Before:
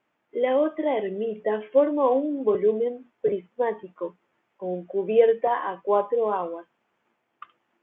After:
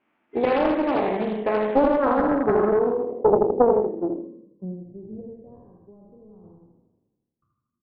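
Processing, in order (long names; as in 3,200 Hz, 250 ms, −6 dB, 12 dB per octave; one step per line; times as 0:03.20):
peak hold with a decay on every bin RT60 1.25 s
octave-band graphic EQ 125/250/500/2,000 Hz −7/+6/−5/−8 dB
in parallel at 0 dB: brickwall limiter −18.5 dBFS, peak gain reduction 8.5 dB
on the sum: transient designer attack +5 dB, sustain −7 dB
on a send: repeating echo 80 ms, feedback 46%, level −4.5 dB
0:05.83–0:06.44: on the sum: downward compressor 2 to 1, threshold −22 dBFS, peak gain reduction 6 dB
low-pass filter sweep 2,300 Hz → 110 Hz, 0:02.16–0:05.05
highs frequency-modulated by the lows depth 0.55 ms
level −5 dB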